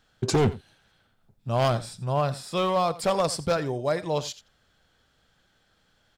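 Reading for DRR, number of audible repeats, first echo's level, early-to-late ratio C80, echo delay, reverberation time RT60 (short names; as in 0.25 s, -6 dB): none, 1, -17.5 dB, none, 87 ms, none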